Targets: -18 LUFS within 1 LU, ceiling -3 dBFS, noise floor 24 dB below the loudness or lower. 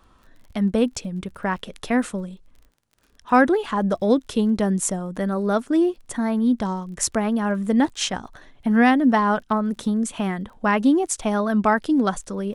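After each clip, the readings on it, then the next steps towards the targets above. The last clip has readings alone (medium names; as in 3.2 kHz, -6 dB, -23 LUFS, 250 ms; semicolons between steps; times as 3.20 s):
tick rate 29 per s; loudness -22.0 LUFS; peak level -4.0 dBFS; loudness target -18.0 LUFS
-> de-click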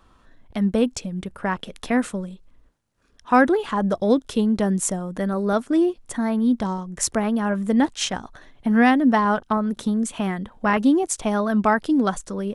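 tick rate 0 per s; loudness -22.0 LUFS; peak level -4.0 dBFS; loudness target -18.0 LUFS
-> trim +4 dB; peak limiter -3 dBFS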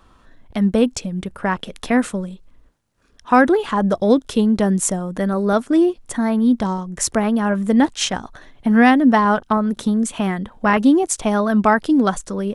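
loudness -18.0 LUFS; peak level -3.0 dBFS; noise floor -54 dBFS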